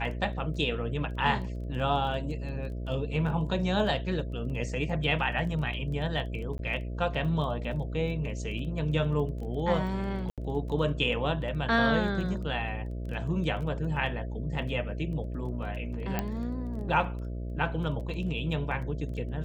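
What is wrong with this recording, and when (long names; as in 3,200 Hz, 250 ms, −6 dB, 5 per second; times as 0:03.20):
mains buzz 60 Hz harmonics 11 −35 dBFS
surface crackle 13 per second −38 dBFS
0:06.58–0:06.59: drop-out 12 ms
0:10.30–0:10.38: drop-out 77 ms
0:16.19: click −14 dBFS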